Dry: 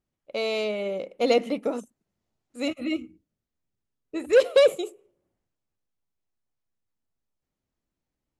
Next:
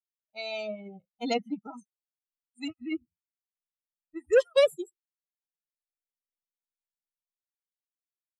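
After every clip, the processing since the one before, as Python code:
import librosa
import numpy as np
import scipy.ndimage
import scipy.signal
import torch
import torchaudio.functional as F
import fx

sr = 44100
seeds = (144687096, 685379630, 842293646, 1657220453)

y = fx.bin_expand(x, sr, power=3.0)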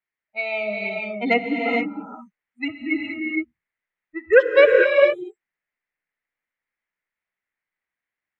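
y = fx.lowpass_res(x, sr, hz=2000.0, q=4.8)
y = fx.rev_gated(y, sr, seeds[0], gate_ms=490, shape='rising', drr_db=0.5)
y = F.gain(torch.from_numpy(y), 6.5).numpy()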